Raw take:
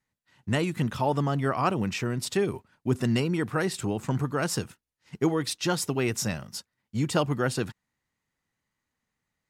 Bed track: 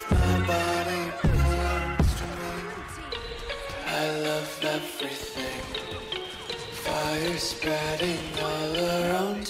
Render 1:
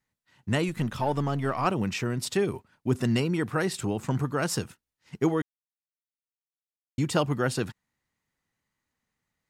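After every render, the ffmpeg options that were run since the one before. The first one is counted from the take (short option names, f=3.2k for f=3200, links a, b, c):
-filter_complex "[0:a]asettb=1/sr,asplit=3[a][b][c];[a]atrim=end=0.684[d];[b]atrim=start=0.68:end=1.66,asetpts=PTS-STARTPTS,afade=t=in:d=0.004:c=qsin,afade=t=out:st=0.976:d=0.004:c=qsin,aeval=exprs='if(lt(val(0),0),0.708*val(0),val(0))':c=same[e];[c]atrim=start=1.656[f];[d][e]acrossfade=d=0.004:c1=hsin:c2=qsin[g];[g][f]acrossfade=d=0.004:c1=qsin:c2=hsin,asplit=3[h][i][j];[h]atrim=end=5.42,asetpts=PTS-STARTPTS,afade=t=out:st=5.416:d=0.004:c=hsin[k];[i]atrim=start=5.42:end=6.98,asetpts=PTS-STARTPTS,volume=0[l];[j]atrim=start=6.98,asetpts=PTS-STARTPTS,afade=t=in:d=0.004:c=hsin[m];[k][l][m]concat=n=3:v=0:a=1"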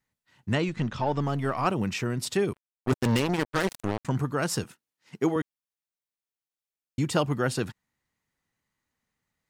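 -filter_complex "[0:a]asettb=1/sr,asplit=3[a][b][c];[a]atrim=end=0.534[d];[b]atrim=start=0.53:end=1.22,asetpts=PTS-STARTPTS,afade=t=in:d=0.004:c=qsin,afade=t=out:st=0.686:d=0.004:c=qsin,lowpass=f=6.6k:w=0.5412,lowpass=f=6.6k:w=1.3066[e];[c]atrim=start=1.216[f];[d][e]acrossfade=d=0.004:c1=hsin:c2=qsin[g];[g][f]acrossfade=d=0.004:c1=qsin:c2=hsin,asettb=1/sr,asplit=3[h][i][j];[h]atrim=end=2.534[k];[i]atrim=start=2.53:end=4.05,asetpts=PTS-STARTPTS,afade=t=in:d=0.004:c=qsin,afade=t=out:st=1.516:d=0.004:c=qsin,acrusher=bits=3:mix=0:aa=0.5[l];[j]atrim=start=4.046[m];[k][l]acrossfade=d=0.004:c1=hsin:c2=qsin[n];[n][m]acrossfade=d=0.004:c1=qsin:c2=hsin,asettb=1/sr,asplit=3[o][p][q];[o]atrim=end=4.644[r];[p]atrim=start=4.64:end=5.36,asetpts=PTS-STARTPTS,afade=t=in:d=0.004:c=qsin,afade=t=out:st=0.716:d=0.004:c=qsin,highpass=170[s];[q]atrim=start=5.356[t];[r][s]acrossfade=d=0.004:c1=hsin:c2=qsin[u];[u][t]acrossfade=d=0.004:c1=qsin:c2=hsin"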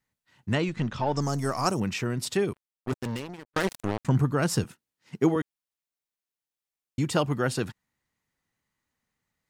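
-filter_complex "[0:a]asettb=1/sr,asplit=3[a][b][c];[a]atrim=end=1.164[d];[b]atrim=start=1.16:end=1.8,asetpts=PTS-STARTPTS,afade=t=in:d=0.004:c=qsin,afade=t=out:st=0.636:d=0.004:c=qsin,highshelf=f=4.3k:t=q:w=3:g=11.5[e];[c]atrim=start=1.796[f];[d][e]acrossfade=d=0.004:c1=hsin:c2=qsin[g];[g][f]acrossfade=d=0.004:c1=qsin:c2=hsin,asettb=1/sr,asplit=3[h][i][j];[h]atrim=end=4.064[k];[i]atrim=start=4.06:end=5.35,asetpts=PTS-STARTPTS,afade=t=in:d=0.004:c=qsin,afade=t=out:st=1.286:d=0.004:c=qsin,lowshelf=f=270:g=7[l];[j]atrim=start=5.346[m];[k][l]acrossfade=d=0.004:c1=hsin:c2=qsin[n];[n][m]acrossfade=d=0.004:c1=qsin:c2=hsin,asplit=2[o][p];[o]atrim=end=3.56,asetpts=PTS-STARTPTS,afade=t=out:st=2.38:d=1.18[q];[p]atrim=start=3.56,asetpts=PTS-STARTPTS,afade=t=in:d=0.004:c=hsin[r];[q][r]concat=n=2:v=0:a=1"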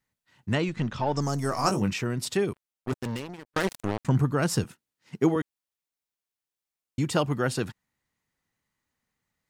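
-filter_complex "[0:a]asettb=1/sr,asplit=3[a][b][c];[a]atrim=end=1.504[d];[b]atrim=start=1.5:end=1.93,asetpts=PTS-STARTPTS,afade=t=in:d=0.004:c=qsin,afade=t=out:st=0.426:d=0.004:c=qsin,asplit=2[e][f];[f]adelay=20,volume=-5.5dB[g];[e][g]amix=inputs=2:normalize=0,atrim=end_sample=18963[h];[c]atrim=start=1.926[i];[d][h]acrossfade=d=0.004:c1=hsin:c2=qsin[j];[j][i]acrossfade=d=0.004:c1=qsin:c2=hsin"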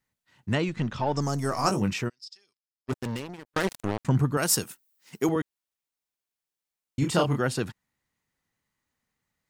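-filter_complex "[0:a]asplit=3[a][b][c];[a]afade=t=out:st=2.08:d=0.02[d];[b]bandpass=f=5.1k:t=q:w=15,afade=t=in:st=2.08:d=0.02,afade=t=out:st=2.88:d=0.02[e];[c]afade=t=in:st=2.88:d=0.02[f];[d][e][f]amix=inputs=3:normalize=0,asettb=1/sr,asplit=3[g][h][i];[g]atrim=end=4.374[j];[h]atrim=start=4.37:end=5.29,asetpts=PTS-STARTPTS,afade=t=in:d=0.004:c=qsin,afade=t=out:st=0.916:d=0.004:c=qsin,aemphasis=mode=production:type=bsi[k];[i]atrim=start=5.286[l];[j][k]acrossfade=d=0.004:c1=hsin:c2=qsin[m];[m][l]acrossfade=d=0.004:c1=qsin:c2=hsin,asettb=1/sr,asplit=3[n][o][p];[n]atrim=end=6.994[q];[o]atrim=start=6.99:end=7.4,asetpts=PTS-STARTPTS,afade=t=in:d=0.004:c=qsin,afade=t=out:st=0.406:d=0.004:c=qsin,asplit=2[r][s];[s]adelay=29,volume=-3.5dB[t];[r][t]amix=inputs=2:normalize=0,atrim=end_sample=18081[u];[p]atrim=start=7.396[v];[q][u]acrossfade=d=0.004:c1=hsin:c2=qsin[w];[w][v]acrossfade=d=0.004:c1=qsin:c2=hsin"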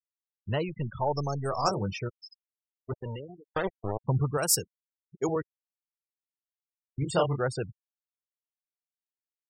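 -af "afftfilt=real='re*gte(hypot(re,im),0.0355)':imag='im*gte(hypot(re,im),0.0355)':win_size=1024:overlap=0.75,equalizer=f=250:t=o:w=1:g=-12,equalizer=f=500:t=o:w=1:g=3,equalizer=f=2k:t=o:w=1:g=-7"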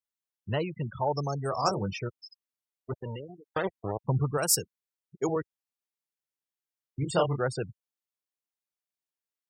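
-af "highpass=81"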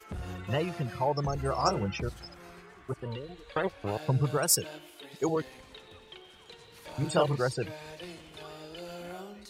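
-filter_complex "[1:a]volume=-16.5dB[a];[0:a][a]amix=inputs=2:normalize=0"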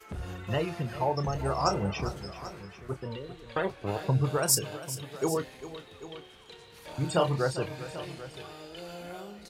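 -filter_complex "[0:a]asplit=2[a][b];[b]adelay=30,volume=-11dB[c];[a][c]amix=inputs=2:normalize=0,aecho=1:1:398|790:0.2|0.168"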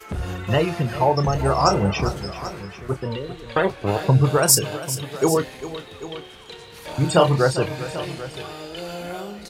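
-af "volume=10dB,alimiter=limit=-3dB:level=0:latency=1"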